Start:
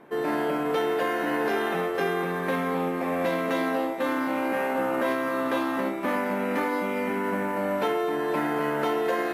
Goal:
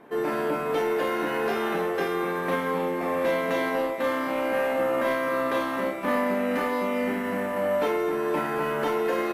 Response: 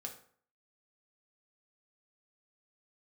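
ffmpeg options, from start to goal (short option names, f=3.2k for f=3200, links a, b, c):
-filter_complex "[0:a]asoftclip=type=tanh:threshold=-17dB,asplit=2[a][b];[b]aecho=0:1:32|49:0.562|0.316[c];[a][c]amix=inputs=2:normalize=0"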